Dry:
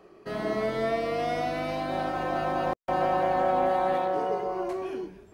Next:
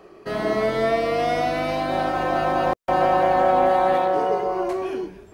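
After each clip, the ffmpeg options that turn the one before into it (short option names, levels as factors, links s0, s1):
-af "equalizer=f=190:w=1.1:g=-2.5,volume=2.24"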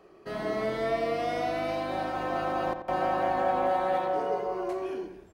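-filter_complex "[0:a]asplit=2[s0][s1];[s1]adelay=87,lowpass=f=3000:p=1,volume=0.376,asplit=2[s2][s3];[s3]adelay=87,lowpass=f=3000:p=1,volume=0.42,asplit=2[s4][s5];[s5]adelay=87,lowpass=f=3000:p=1,volume=0.42,asplit=2[s6][s7];[s7]adelay=87,lowpass=f=3000:p=1,volume=0.42,asplit=2[s8][s9];[s9]adelay=87,lowpass=f=3000:p=1,volume=0.42[s10];[s0][s2][s4][s6][s8][s10]amix=inputs=6:normalize=0,volume=0.376"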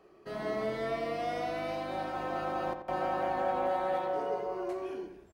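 -filter_complex "[0:a]asplit=2[s0][s1];[s1]adelay=14,volume=0.237[s2];[s0][s2]amix=inputs=2:normalize=0,volume=0.596"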